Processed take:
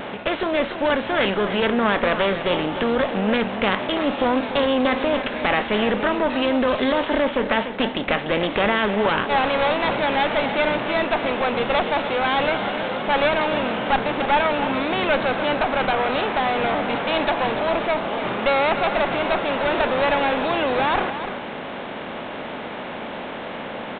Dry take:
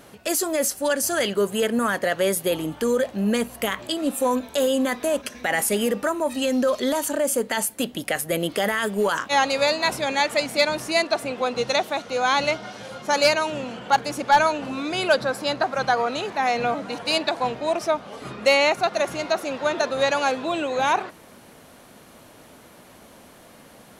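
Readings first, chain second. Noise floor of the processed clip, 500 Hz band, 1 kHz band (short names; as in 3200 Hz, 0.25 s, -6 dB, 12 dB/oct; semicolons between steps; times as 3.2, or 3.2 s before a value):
-32 dBFS, +2.0 dB, +2.5 dB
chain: per-bin compression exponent 0.6; one-sided clip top -22 dBFS; vibrato 3.7 Hz 52 cents; echo 0.294 s -10.5 dB; downsampling 8000 Hz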